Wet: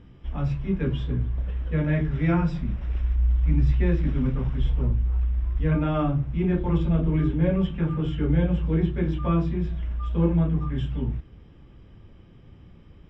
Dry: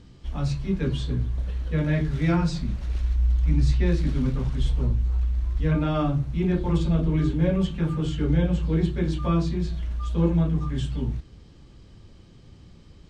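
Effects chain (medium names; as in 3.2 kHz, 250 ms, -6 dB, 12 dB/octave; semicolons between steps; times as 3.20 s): Savitzky-Golay filter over 25 samples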